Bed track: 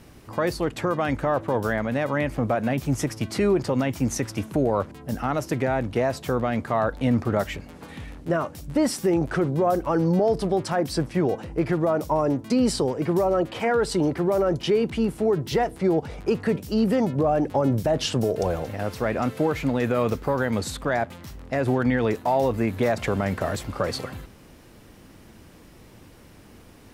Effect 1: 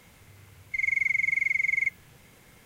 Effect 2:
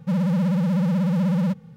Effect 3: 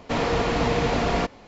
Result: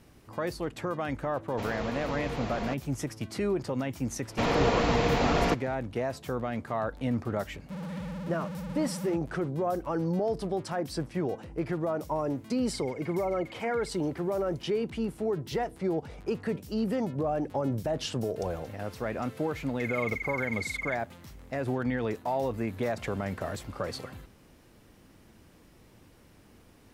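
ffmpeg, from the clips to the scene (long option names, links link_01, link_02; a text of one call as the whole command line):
ffmpeg -i bed.wav -i cue0.wav -i cue1.wav -i cue2.wav -filter_complex "[3:a]asplit=2[link_01][link_02];[1:a]asplit=2[link_03][link_04];[0:a]volume=-8dB[link_05];[2:a]asoftclip=type=tanh:threshold=-27dB[link_06];[link_03]acompressor=threshold=-37dB:ratio=6:attack=3.2:release=140:knee=1:detection=peak[link_07];[link_01]atrim=end=1.47,asetpts=PTS-STARTPTS,volume=-12.5dB,afade=type=in:duration=0.004:curve=hsin,afade=type=out:start_time=1.466:duration=0.004:curve=hsin,adelay=1480[link_08];[link_02]atrim=end=1.47,asetpts=PTS-STARTPTS,volume=-2.5dB,afade=type=in:duration=0.004:curve=hsin,afade=type=out:start_time=1.466:duration=0.004:curve=hsin,adelay=4280[link_09];[link_06]atrim=end=1.76,asetpts=PTS-STARTPTS,volume=-9.5dB,afade=type=in:duration=0.004:curve=hsin,afade=type=out:start_time=1.756:duration=0.004:curve=hsin,adelay=7630[link_10];[link_07]atrim=end=2.65,asetpts=PTS-STARTPTS,volume=-11dB,afade=type=in:duration=0.004:curve=hsin,afade=type=out:start_time=2.646:duration=0.004:curve=hsin,adelay=12000[link_11];[link_04]atrim=end=2.65,asetpts=PTS-STARTPTS,volume=-10dB,afade=type=in:duration=0.004:curve=hsin,afade=type=out:start_time=2.646:duration=0.004:curve=hsin,adelay=19060[link_12];[link_05][link_08][link_09][link_10][link_11][link_12]amix=inputs=6:normalize=0" out.wav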